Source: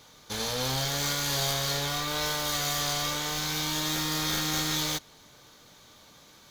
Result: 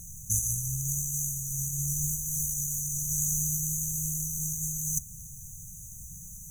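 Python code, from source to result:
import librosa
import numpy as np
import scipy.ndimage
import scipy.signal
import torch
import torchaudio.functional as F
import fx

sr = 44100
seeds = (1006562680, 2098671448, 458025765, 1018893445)

y = fx.peak_eq(x, sr, hz=9400.0, db=5.5, octaves=1.0)
y = fx.over_compress(y, sr, threshold_db=-32.0, ratio=-0.5)
y = fx.dmg_noise_colour(y, sr, seeds[0], colour='pink', level_db=-51.0)
y = fx.brickwall_bandstop(y, sr, low_hz=190.0, high_hz=5900.0)
y = F.gain(torch.from_numpy(y), 7.0).numpy()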